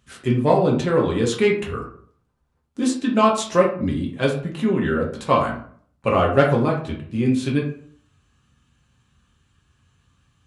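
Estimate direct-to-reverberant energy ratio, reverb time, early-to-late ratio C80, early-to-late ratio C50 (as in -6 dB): -2.0 dB, 0.55 s, 11.5 dB, 7.0 dB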